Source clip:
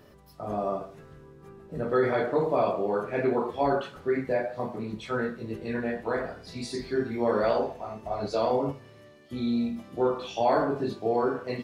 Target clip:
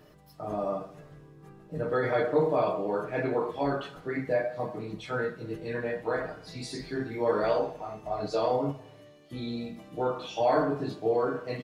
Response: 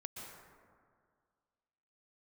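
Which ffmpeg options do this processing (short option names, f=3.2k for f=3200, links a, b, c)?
-filter_complex "[0:a]aecho=1:1:6.5:0.58,asplit=2[a][b];[1:a]atrim=start_sample=2205,afade=t=out:st=0.41:d=0.01,atrim=end_sample=18522[c];[b][c]afir=irnorm=-1:irlink=0,volume=-16.5dB[d];[a][d]amix=inputs=2:normalize=0,volume=-3dB"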